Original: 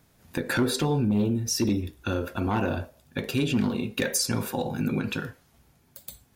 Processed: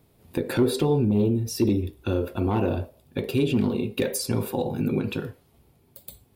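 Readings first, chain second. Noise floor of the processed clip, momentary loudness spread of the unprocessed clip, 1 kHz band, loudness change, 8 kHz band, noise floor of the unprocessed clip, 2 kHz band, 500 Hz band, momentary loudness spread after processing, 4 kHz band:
−62 dBFS, 11 LU, −1.0 dB, +2.0 dB, −5.0 dB, −63 dBFS, −5.5 dB, +5.0 dB, 12 LU, −3.5 dB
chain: graphic EQ with 15 bands 100 Hz +4 dB, 400 Hz +7 dB, 1,600 Hz −8 dB, 6,300 Hz −9 dB

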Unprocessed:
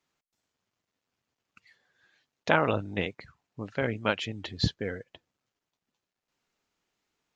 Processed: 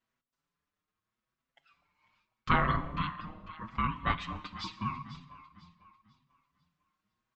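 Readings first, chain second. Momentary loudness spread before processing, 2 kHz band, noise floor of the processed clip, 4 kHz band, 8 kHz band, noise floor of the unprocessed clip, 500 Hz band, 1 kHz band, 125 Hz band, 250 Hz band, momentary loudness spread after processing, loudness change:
15 LU, −4.5 dB, below −85 dBFS, −7.0 dB, can't be measured, below −85 dBFS, −13.0 dB, +2.0 dB, −2.0 dB, −4.0 dB, 18 LU, −3.0 dB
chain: Butterworth high-pass 370 Hz 48 dB per octave
spectral tilt −3.5 dB per octave
ring modulation 620 Hz
on a send: delay that swaps between a low-pass and a high-pass 248 ms, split 810 Hz, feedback 58%, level −10.5 dB
on the sum: dense smooth reverb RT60 1.2 s, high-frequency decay 0.95×, DRR 13 dB
barber-pole flanger 5.8 ms +0.82 Hz
level +3.5 dB

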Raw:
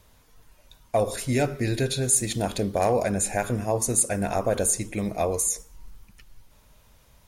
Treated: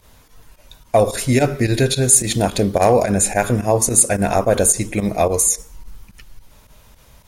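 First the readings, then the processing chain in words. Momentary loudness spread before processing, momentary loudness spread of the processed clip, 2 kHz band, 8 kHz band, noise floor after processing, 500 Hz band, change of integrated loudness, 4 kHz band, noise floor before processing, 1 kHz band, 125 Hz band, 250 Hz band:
6 LU, 6 LU, +8.0 dB, +9.0 dB, −50 dBFS, +8.5 dB, +8.5 dB, +8.5 dB, −58 dBFS, +8.5 dB, +8.5 dB, +8.5 dB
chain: fake sidechain pumping 108 BPM, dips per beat 2, −13 dB, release 64 ms
level +9 dB

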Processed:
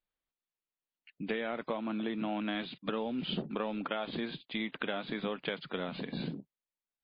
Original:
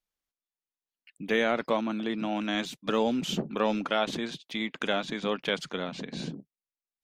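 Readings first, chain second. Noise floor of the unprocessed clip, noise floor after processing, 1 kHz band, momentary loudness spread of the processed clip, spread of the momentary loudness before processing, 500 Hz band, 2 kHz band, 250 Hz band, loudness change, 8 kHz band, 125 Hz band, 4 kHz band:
below −85 dBFS, below −85 dBFS, −7.5 dB, 4 LU, 10 LU, −7.5 dB, −7.0 dB, −5.0 dB, −6.5 dB, below −35 dB, −3.5 dB, −7.0 dB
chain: low-pass filter 4,200 Hz 24 dB per octave
high-shelf EQ 2,400 Hz −2.5 dB
downward compressor 16 to 1, threshold −30 dBFS, peak gain reduction 10 dB
MP3 24 kbit/s 11,025 Hz

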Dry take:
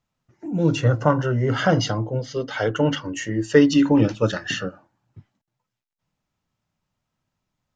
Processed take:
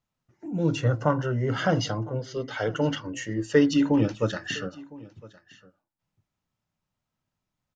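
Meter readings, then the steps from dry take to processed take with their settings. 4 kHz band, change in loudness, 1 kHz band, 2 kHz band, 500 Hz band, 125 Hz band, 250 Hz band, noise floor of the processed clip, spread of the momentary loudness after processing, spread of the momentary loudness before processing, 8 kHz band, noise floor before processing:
−5.0 dB, −5.0 dB, −5.0 dB, −5.0 dB, −5.0 dB, −5.0 dB, −5.0 dB, −85 dBFS, 14 LU, 12 LU, can't be measured, −83 dBFS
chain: single-tap delay 1,009 ms −21.5 dB
level −5 dB

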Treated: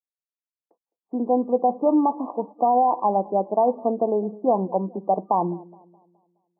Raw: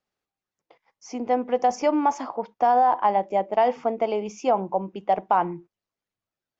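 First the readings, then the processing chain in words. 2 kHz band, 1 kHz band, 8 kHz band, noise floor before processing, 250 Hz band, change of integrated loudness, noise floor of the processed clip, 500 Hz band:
below −40 dB, −0.5 dB, can't be measured, below −85 dBFS, +5.5 dB, +1.0 dB, below −85 dBFS, +2.0 dB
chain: brick-wall band-pass 170–1,200 Hz
tilt shelving filter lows +7 dB, about 730 Hz
downward expander −45 dBFS
delay with a low-pass on its return 210 ms, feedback 42%, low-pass 800 Hz, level −21 dB

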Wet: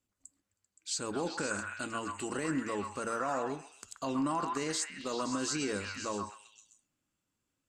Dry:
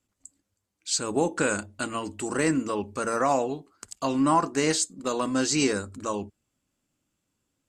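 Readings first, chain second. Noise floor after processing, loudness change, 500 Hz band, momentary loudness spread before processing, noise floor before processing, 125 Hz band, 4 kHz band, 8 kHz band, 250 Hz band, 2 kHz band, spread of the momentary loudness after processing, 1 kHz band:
−85 dBFS, −8.5 dB, −9.5 dB, 9 LU, −80 dBFS, −9.0 dB, −7.5 dB, −8.5 dB, −9.0 dB, −6.5 dB, 7 LU, −8.0 dB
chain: brickwall limiter −18 dBFS, peak gain reduction 7 dB
echo through a band-pass that steps 130 ms, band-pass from 1,300 Hz, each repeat 0.7 octaves, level 0 dB
level −6.5 dB

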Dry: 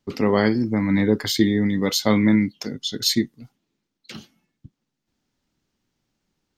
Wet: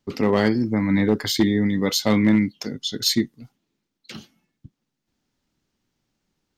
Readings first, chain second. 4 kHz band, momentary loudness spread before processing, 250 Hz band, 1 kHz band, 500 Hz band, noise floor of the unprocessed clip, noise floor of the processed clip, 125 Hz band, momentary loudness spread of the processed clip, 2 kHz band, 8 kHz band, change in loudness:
0.0 dB, 8 LU, 0.0 dB, −0.5 dB, −0.5 dB, −80 dBFS, −80 dBFS, 0.0 dB, 8 LU, −0.5 dB, 0.0 dB, 0.0 dB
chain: hard clipping −10 dBFS, distortion −22 dB

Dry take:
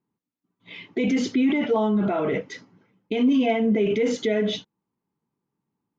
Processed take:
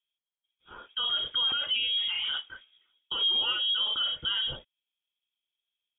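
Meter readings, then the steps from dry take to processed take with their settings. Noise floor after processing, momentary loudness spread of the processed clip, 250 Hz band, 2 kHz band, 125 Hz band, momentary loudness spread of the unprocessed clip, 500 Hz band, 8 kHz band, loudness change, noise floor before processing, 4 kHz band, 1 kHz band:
below −85 dBFS, 10 LU, below −35 dB, −4.0 dB, below −15 dB, 13 LU, −27.0 dB, can't be measured, −3.5 dB, −85 dBFS, +13.0 dB, −9.5 dB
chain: dynamic equaliser 2,100 Hz, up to +3 dB, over −45 dBFS
voice inversion scrambler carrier 3,500 Hz
level −7.5 dB

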